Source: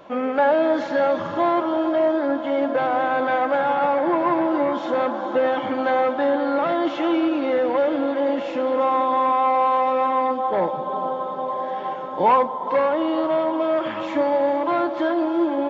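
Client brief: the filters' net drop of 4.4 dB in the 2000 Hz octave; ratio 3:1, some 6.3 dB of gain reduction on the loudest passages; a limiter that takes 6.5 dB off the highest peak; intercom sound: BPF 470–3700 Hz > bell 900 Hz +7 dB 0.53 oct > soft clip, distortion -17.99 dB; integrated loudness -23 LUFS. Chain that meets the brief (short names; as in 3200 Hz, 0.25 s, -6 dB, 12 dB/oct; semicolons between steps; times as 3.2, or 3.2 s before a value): bell 2000 Hz -6.5 dB; compressor 3:1, threshold -22 dBFS; limiter -19 dBFS; BPF 470–3700 Hz; bell 900 Hz +7 dB 0.53 oct; soft clip -20 dBFS; gain +4.5 dB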